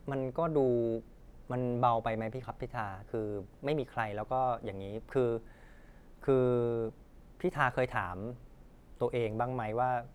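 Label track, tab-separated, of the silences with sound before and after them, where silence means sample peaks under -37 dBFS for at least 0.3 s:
1.000000	1.500000	silence
5.380000	6.240000	silence
6.890000	7.400000	silence
8.320000	9.010000	silence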